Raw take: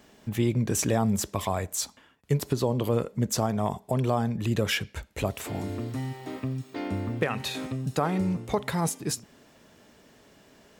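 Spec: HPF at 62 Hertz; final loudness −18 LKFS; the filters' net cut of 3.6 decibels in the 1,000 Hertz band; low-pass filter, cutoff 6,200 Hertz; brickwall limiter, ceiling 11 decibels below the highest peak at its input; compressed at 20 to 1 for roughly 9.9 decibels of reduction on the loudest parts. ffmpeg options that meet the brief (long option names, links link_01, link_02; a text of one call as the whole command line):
ffmpeg -i in.wav -af "highpass=62,lowpass=6200,equalizer=frequency=1000:width_type=o:gain=-5,acompressor=threshold=-30dB:ratio=20,volume=20dB,alimiter=limit=-8dB:level=0:latency=1" out.wav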